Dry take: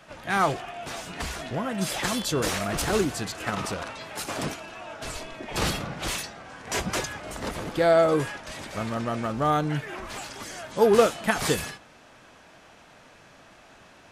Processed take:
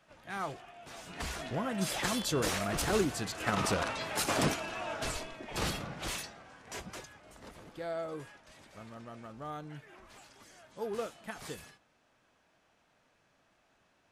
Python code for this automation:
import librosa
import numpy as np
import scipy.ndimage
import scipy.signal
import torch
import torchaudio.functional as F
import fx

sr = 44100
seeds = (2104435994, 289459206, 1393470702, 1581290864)

y = fx.gain(x, sr, db=fx.line((0.84, -14.5), (1.28, -5.0), (3.28, -5.0), (3.76, 1.5), (4.98, 1.5), (5.38, -7.5), (6.24, -7.5), (7.07, -18.5)))